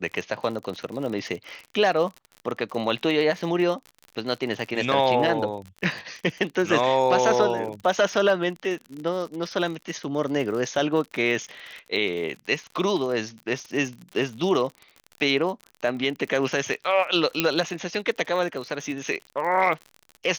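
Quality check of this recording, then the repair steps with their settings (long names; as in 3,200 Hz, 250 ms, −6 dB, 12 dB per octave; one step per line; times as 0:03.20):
surface crackle 54 per second −32 dBFS
0:17.40: click −4 dBFS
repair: click removal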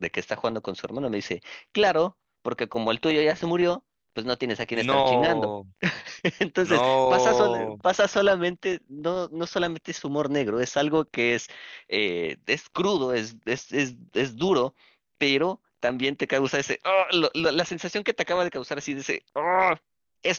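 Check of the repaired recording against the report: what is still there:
0:17.40: click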